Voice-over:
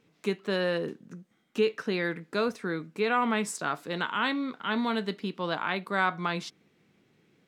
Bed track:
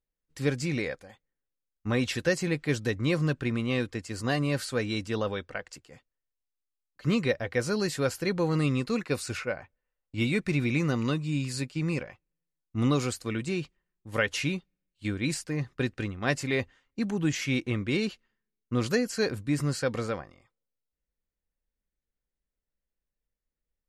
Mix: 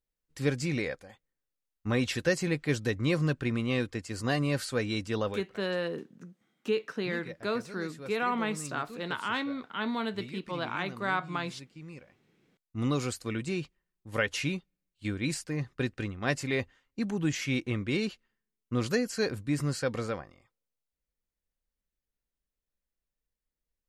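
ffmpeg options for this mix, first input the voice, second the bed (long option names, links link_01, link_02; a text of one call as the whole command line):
ffmpeg -i stem1.wav -i stem2.wav -filter_complex "[0:a]adelay=5100,volume=-3.5dB[link_01];[1:a]volume=13.5dB,afade=type=out:start_time=5.25:duration=0.25:silence=0.16788,afade=type=in:start_time=12.09:duration=1.08:silence=0.188365[link_02];[link_01][link_02]amix=inputs=2:normalize=0" out.wav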